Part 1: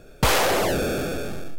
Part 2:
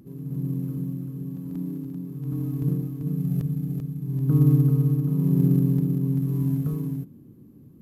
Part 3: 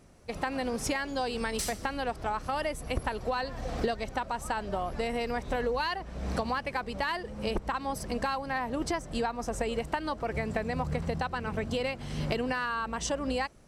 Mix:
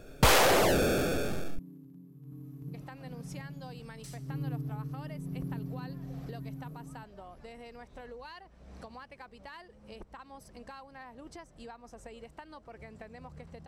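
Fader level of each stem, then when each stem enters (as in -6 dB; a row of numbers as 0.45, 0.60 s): -2.5, -18.0, -16.5 dB; 0.00, 0.00, 2.45 s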